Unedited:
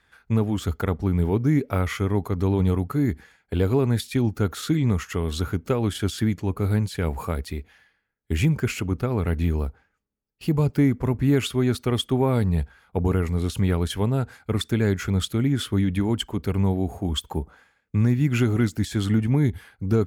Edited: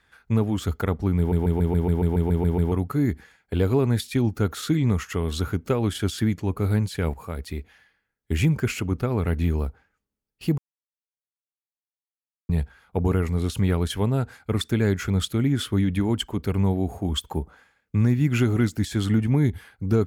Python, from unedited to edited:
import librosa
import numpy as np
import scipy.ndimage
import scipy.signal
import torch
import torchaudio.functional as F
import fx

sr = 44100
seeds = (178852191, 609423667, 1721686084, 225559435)

y = fx.edit(x, sr, fx.stutter_over(start_s=1.18, slice_s=0.14, count=11),
    fx.fade_in_from(start_s=7.14, length_s=0.44, floor_db=-13.0),
    fx.silence(start_s=10.58, length_s=1.91), tone=tone)